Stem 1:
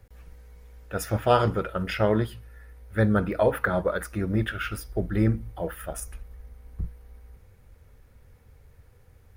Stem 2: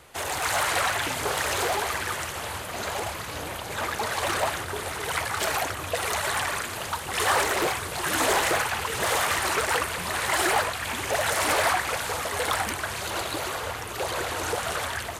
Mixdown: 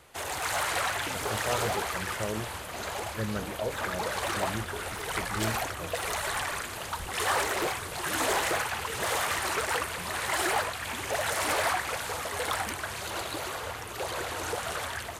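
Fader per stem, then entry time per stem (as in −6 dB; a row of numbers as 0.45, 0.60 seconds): −11.5, −4.5 decibels; 0.20, 0.00 seconds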